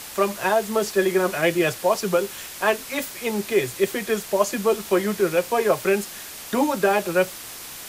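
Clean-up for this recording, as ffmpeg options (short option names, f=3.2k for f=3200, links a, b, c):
-af "afwtdn=0.016"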